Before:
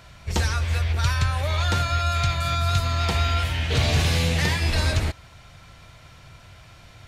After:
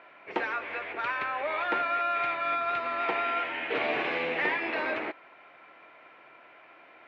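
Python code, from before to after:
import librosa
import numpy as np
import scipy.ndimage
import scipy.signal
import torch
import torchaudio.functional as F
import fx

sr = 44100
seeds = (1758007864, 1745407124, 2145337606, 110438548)

y = scipy.signal.sosfilt(scipy.signal.ellip(3, 1.0, 80, [310.0, 2400.0], 'bandpass', fs=sr, output='sos'), x)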